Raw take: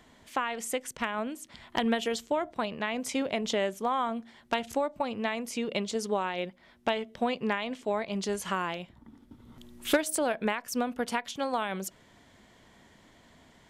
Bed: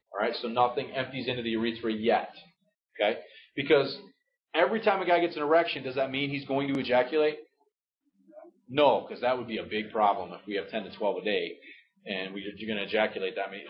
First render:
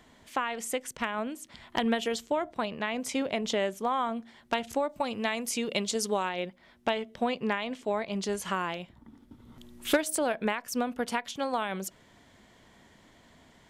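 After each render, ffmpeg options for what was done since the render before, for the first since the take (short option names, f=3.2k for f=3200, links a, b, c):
-filter_complex "[0:a]asettb=1/sr,asplit=3[a][b][c];[a]atrim=end=4.894[d];[b]atrim=start=4.89:end=6.29,asetpts=PTS-STARTPTS,afade=t=in:d=0.004:c=qsin,afade=t=out:st=1.396:d=0.004:c=qsin,highshelf=f=3.9k:g=9.5[e];[c]atrim=start=6.286[f];[d][e]acrossfade=d=0.004:c1=hsin:c2=qsin[g];[g][f]acrossfade=d=0.004:c1=qsin:c2=hsin"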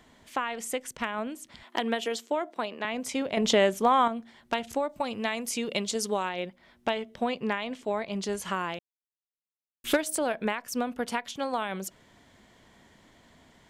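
-filter_complex "[0:a]asettb=1/sr,asplit=3[a][b][c];[a]atrim=end=1.634[d];[b]atrim=start=1.63:end=2.85,asetpts=PTS-STARTPTS,afade=t=in:d=0.004:c=qsin,afade=t=out:st=1.216:d=0.004:c=qsin,highpass=f=240:w=0.5412,highpass=f=240:w=1.3066[e];[c]atrim=start=2.846[f];[d][e]acrossfade=d=0.004:c1=hsin:c2=qsin[g];[g][f]acrossfade=d=0.004:c1=qsin:c2=hsin,asettb=1/sr,asplit=3[h][i][j];[h]atrim=end=3.374[k];[i]atrim=start=3.37:end=4.08,asetpts=PTS-STARTPTS,afade=t=in:d=0.004:c=qsin,afade=t=out:st=0.706:d=0.004:c=qsin,acontrast=81[l];[j]atrim=start=4.076[m];[k][l]acrossfade=d=0.004:c1=hsin:c2=qsin[n];[n][m]acrossfade=d=0.004:c1=qsin:c2=hsin,asplit=3[o][p][q];[o]atrim=end=8.79,asetpts=PTS-STARTPTS,afade=t=out:st=8.786:d=0.004:c=hsin[r];[p]atrim=start=8.79:end=9.84,asetpts=PTS-STARTPTS,volume=0[s];[q]atrim=start=9.84,asetpts=PTS-STARTPTS,afade=t=in:d=0.004:c=hsin[t];[r][s][t]concat=n=3:v=0:a=1"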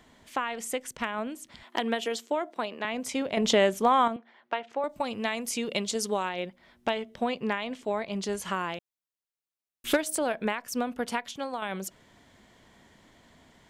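-filter_complex "[0:a]asettb=1/sr,asplit=3[a][b][c];[a]atrim=end=4.164[d];[b]atrim=start=4.16:end=4.84,asetpts=PTS-STARTPTS,afade=t=in:d=0.004:c=qsin,afade=t=out:st=0.676:d=0.004:c=qsin,highpass=450,lowpass=2.4k[e];[c]atrim=start=4.836[f];[d][e]acrossfade=d=0.004:c1=hsin:c2=qsin[g];[g][f]acrossfade=d=0.004:c1=qsin:c2=hsin,asplit=2[h][i];[h]atrim=end=11.62,asetpts=PTS-STARTPTS,afade=t=out:st=11.21:d=0.41:silence=0.501187[j];[i]atrim=start=11.62,asetpts=PTS-STARTPTS,afade=t=in:d=0.004:c=hsin:silence=0.501187[k];[j][k]concat=n=2:v=0:a=1"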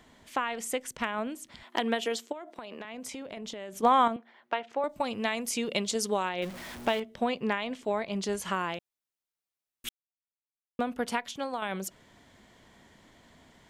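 -filter_complex "[0:a]asplit=3[a][b][c];[a]afade=t=out:st=2.31:d=0.02[d];[b]acompressor=threshold=-36dB:ratio=16:attack=3.2:release=140:knee=1:detection=peak,afade=t=in:st=2.31:d=0.02,afade=t=out:st=3.82:d=0.02[e];[c]afade=t=in:st=3.82:d=0.02[f];[d][e][f]amix=inputs=3:normalize=0,asettb=1/sr,asplit=3[g][h][i];[g]atrim=end=6.424[j];[h]atrim=start=6.42:end=7,asetpts=PTS-STARTPTS,afade=t=in:d=0.004:c=qsin,afade=t=out:st=0.576:d=0.004:c=qsin,aeval=exprs='val(0)+0.5*0.0133*sgn(val(0))':c=same[k];[i]atrim=start=6.996[l];[j][k]acrossfade=d=0.004:c1=hsin:c2=qsin[m];[m][l]acrossfade=d=0.004:c1=qsin:c2=hsin,asplit=3[n][o][p];[n]atrim=end=9.89,asetpts=PTS-STARTPTS,afade=t=out:st=9.886:d=0.004:c=hsin[q];[o]atrim=start=9.89:end=10.79,asetpts=PTS-STARTPTS,volume=0[r];[p]atrim=start=10.79,asetpts=PTS-STARTPTS,afade=t=in:d=0.004:c=hsin[s];[q][r][s]concat=n=3:v=0:a=1"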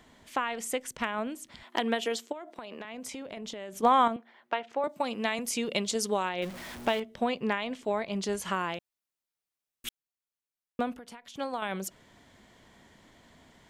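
-filter_complex "[0:a]asettb=1/sr,asplit=3[a][b][c];[a]atrim=end=4.874[d];[b]atrim=start=4.87:end=5.39,asetpts=PTS-STARTPTS,afade=t=in:d=0.004:c=qsin,afade=t=out:st=0.516:d=0.004:c=qsin,highpass=f=150:w=0.5412,highpass=f=150:w=1.3066[e];[c]atrim=start=5.386[f];[d][e]acrossfade=d=0.004:c1=hsin:c2=qsin[g];[g][f]acrossfade=d=0.004:c1=qsin:c2=hsin,asettb=1/sr,asplit=3[h][i][j];[h]atrim=end=10.934[k];[i]atrim=start=10.93:end=11.34,asetpts=PTS-STARTPTS,afade=t=in:d=0.004:c=qsin,afade=t=out:st=0.406:d=0.004:c=qsin,acompressor=threshold=-45dB:ratio=5:attack=3.2:release=140:knee=1:detection=peak[l];[j]atrim=start=11.336[m];[k][l]acrossfade=d=0.004:c1=hsin:c2=qsin[n];[n][m]acrossfade=d=0.004:c1=qsin:c2=hsin"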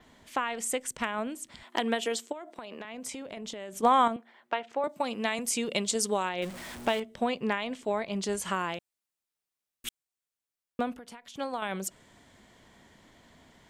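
-af "adynamicequalizer=threshold=0.00158:dfrequency=8200:dqfactor=2.5:tfrequency=8200:tqfactor=2.5:attack=5:release=100:ratio=0.375:range=3.5:mode=boostabove:tftype=bell"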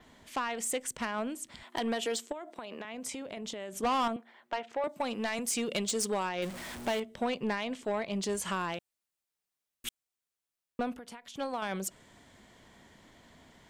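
-af "asoftclip=type=tanh:threshold=-24.5dB"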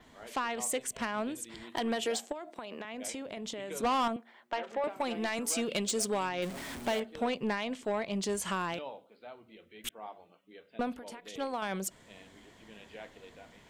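-filter_complex "[1:a]volume=-21dB[a];[0:a][a]amix=inputs=2:normalize=0"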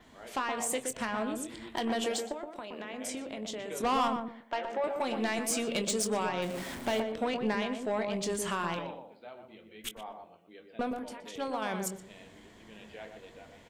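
-filter_complex "[0:a]asplit=2[a][b];[b]adelay=23,volume=-11dB[c];[a][c]amix=inputs=2:normalize=0,asplit=2[d][e];[e]adelay=121,lowpass=f=1.1k:p=1,volume=-4dB,asplit=2[f][g];[g]adelay=121,lowpass=f=1.1k:p=1,volume=0.26,asplit=2[h][i];[i]adelay=121,lowpass=f=1.1k:p=1,volume=0.26,asplit=2[j][k];[k]adelay=121,lowpass=f=1.1k:p=1,volume=0.26[l];[d][f][h][j][l]amix=inputs=5:normalize=0"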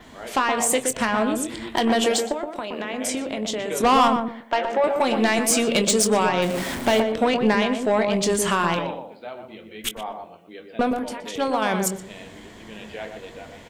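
-af "volume=11.5dB"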